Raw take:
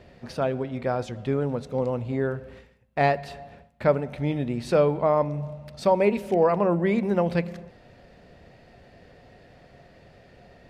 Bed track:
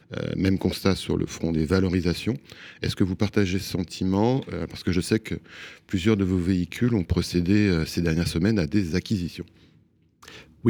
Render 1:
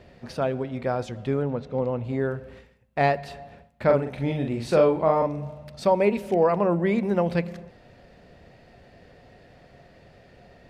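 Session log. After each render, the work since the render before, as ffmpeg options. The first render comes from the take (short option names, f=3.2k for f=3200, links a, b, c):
-filter_complex "[0:a]asettb=1/sr,asplit=3[a][b][c];[a]atrim=end=1.424[d];[b]atrim=start=1.42:end=2.04,asetpts=PTS-STARTPTS,afade=t=in:d=0.004:c=qsin,afade=t=out:st=0.616:d=0.004:c=qsin,lowpass=3.6k[e];[c]atrim=start=2.036[f];[d][e]acrossfade=d=0.004:c1=hsin:c2=qsin[g];[g][f]acrossfade=d=0.004:c1=qsin:c2=hsin,asettb=1/sr,asplit=3[h][i][j];[h]atrim=end=3.854[k];[i]atrim=start=3.85:end=5.64,asetpts=PTS-STARTPTS,afade=t=in:d=0.004:c=qsin,afade=t=out:st=1.786:d=0.004:c=qsin,asplit=2[l][m];[m]adelay=44,volume=-4dB[n];[l][n]amix=inputs=2:normalize=0,atrim=end_sample=78939[o];[j]atrim=start=5.636[p];[k][o]acrossfade=d=0.004:c1=hsin:c2=qsin[q];[q][p]acrossfade=d=0.004:c1=qsin:c2=hsin"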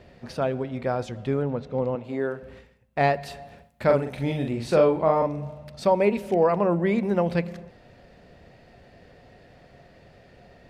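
-filter_complex "[0:a]asettb=1/sr,asplit=3[a][b][c];[a]atrim=end=1.954[d];[b]atrim=start=1.95:end=2.43,asetpts=PTS-STARTPTS,afade=t=in:d=0.004:c=qsin,afade=t=out:st=0.476:d=0.004:c=qsin,highpass=230[e];[c]atrim=start=2.426[f];[d][e]acrossfade=d=0.004:c1=hsin:c2=qsin[g];[g][f]acrossfade=d=0.004:c1=qsin:c2=hsin,asettb=1/sr,asplit=3[h][i][j];[h]atrim=end=3.214[k];[i]atrim=start=3.21:end=4.51,asetpts=PTS-STARTPTS,afade=t=in:d=0.004:c=qsin,afade=t=out:st=1.296:d=0.004:c=qsin,aemphasis=mode=production:type=cd[l];[j]atrim=start=4.506[m];[k][l]acrossfade=d=0.004:c1=hsin:c2=qsin[n];[n][m]acrossfade=d=0.004:c1=qsin:c2=hsin"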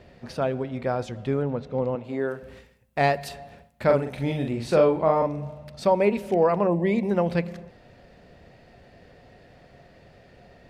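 -filter_complex "[0:a]asettb=1/sr,asplit=3[a][b][c];[a]atrim=end=2.284[d];[b]atrim=start=2.28:end=3.29,asetpts=PTS-STARTPTS,afade=t=in:d=0.004:c=qsin,afade=t=out:st=1.006:d=0.004:c=qsin,aemphasis=mode=production:type=cd[e];[c]atrim=start=3.286[f];[d][e]acrossfade=d=0.004:c1=hsin:c2=qsin[g];[g][f]acrossfade=d=0.004:c1=qsin:c2=hsin,asettb=1/sr,asplit=3[h][i][j];[h]atrim=end=6.674[k];[i]atrim=start=6.67:end=7.11,asetpts=PTS-STARTPTS,afade=t=in:d=0.004:c=qsin,afade=t=out:st=0.436:d=0.004:c=qsin,asuperstop=centerf=1400:order=4:qfactor=1.9[l];[j]atrim=start=7.106[m];[k][l]acrossfade=d=0.004:c1=hsin:c2=qsin[n];[n][m]acrossfade=d=0.004:c1=qsin:c2=hsin"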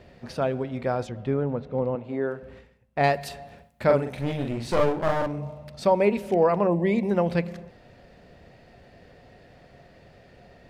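-filter_complex "[0:a]asettb=1/sr,asplit=3[a][b][c];[a]atrim=end=1.074[d];[b]atrim=start=1.07:end=3.04,asetpts=PTS-STARTPTS,afade=t=in:d=0.004:c=qsin,afade=t=out:st=1.966:d=0.004:c=qsin,lowpass=f=2.2k:p=1[e];[c]atrim=start=3.036[f];[d][e]acrossfade=d=0.004:c1=hsin:c2=qsin[g];[g][f]acrossfade=d=0.004:c1=qsin:c2=hsin,asettb=1/sr,asplit=3[h][i][j];[h]atrim=end=4.124[k];[i]atrim=start=4.12:end=5.38,asetpts=PTS-STARTPTS,afade=t=in:d=0.004:c=qsin,afade=t=out:st=1.256:d=0.004:c=qsin,aeval=exprs='clip(val(0),-1,0.0299)':c=same[l];[j]atrim=start=5.376[m];[k][l]acrossfade=d=0.004:c1=hsin:c2=qsin[n];[n][m]acrossfade=d=0.004:c1=qsin:c2=hsin"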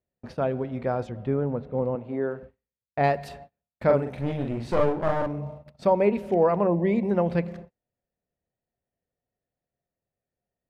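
-af "agate=range=-37dB:threshold=-40dB:ratio=16:detection=peak,highshelf=f=2.8k:g=-11"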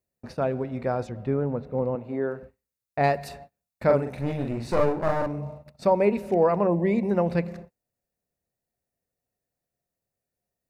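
-af "highshelf=f=4.9k:g=8,bandreject=f=3.2k:w=6.2"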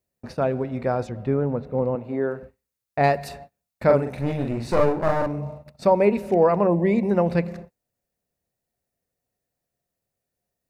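-af "volume=3dB"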